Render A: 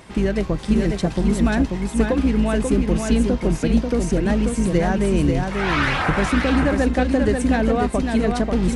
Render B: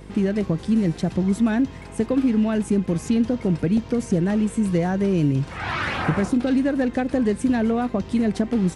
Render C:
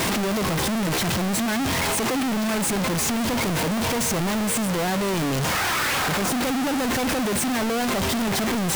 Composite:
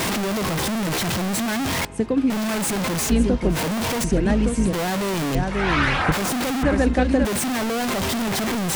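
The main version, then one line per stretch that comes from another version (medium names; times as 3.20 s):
C
1.85–2.30 s: from B
3.10–3.53 s: from A, crossfade 0.10 s
4.04–4.73 s: from A
5.35–6.12 s: from A
6.63–7.25 s: from A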